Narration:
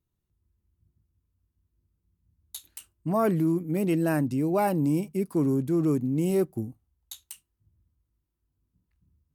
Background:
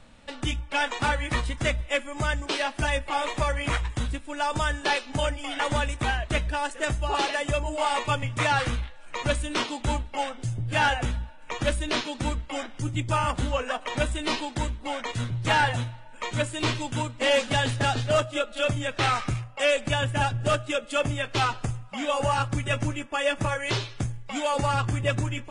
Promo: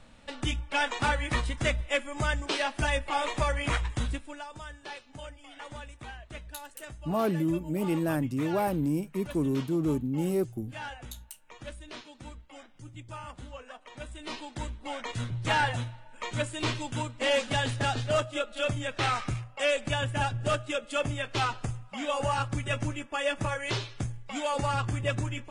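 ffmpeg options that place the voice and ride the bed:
-filter_complex "[0:a]adelay=4000,volume=0.668[s0];[1:a]volume=3.55,afade=t=out:st=4.16:d=0.29:silence=0.177828,afade=t=in:st=13.99:d=1.16:silence=0.223872[s1];[s0][s1]amix=inputs=2:normalize=0"

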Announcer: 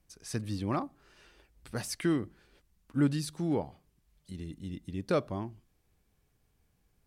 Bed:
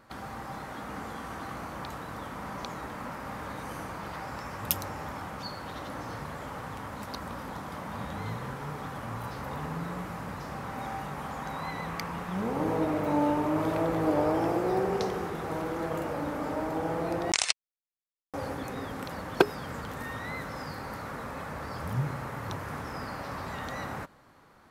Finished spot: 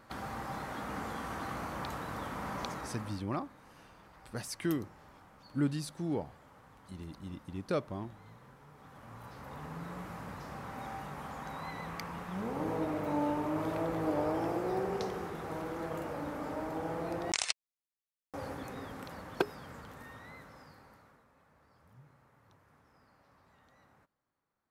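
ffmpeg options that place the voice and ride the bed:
-filter_complex "[0:a]adelay=2600,volume=0.631[s0];[1:a]volume=4.47,afade=t=out:st=2.64:d=0.62:silence=0.112202,afade=t=in:st=8.73:d=1.39:silence=0.211349,afade=t=out:st=18.54:d=2.71:silence=0.0749894[s1];[s0][s1]amix=inputs=2:normalize=0"

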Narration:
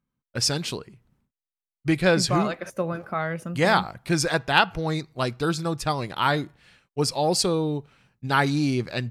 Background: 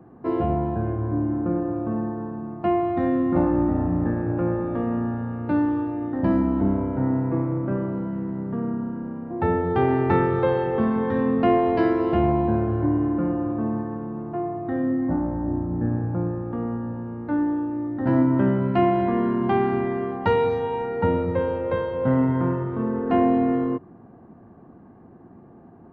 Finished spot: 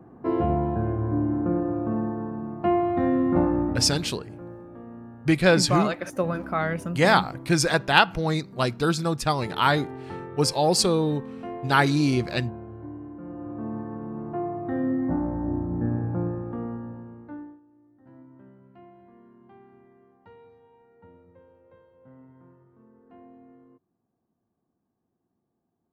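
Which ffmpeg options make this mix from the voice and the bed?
-filter_complex "[0:a]adelay=3400,volume=1.19[s0];[1:a]volume=5.31,afade=t=out:st=3.36:d=0.73:silence=0.149624,afade=t=in:st=13.2:d=1.05:silence=0.177828,afade=t=out:st=16.27:d=1.33:silence=0.0354813[s1];[s0][s1]amix=inputs=2:normalize=0"

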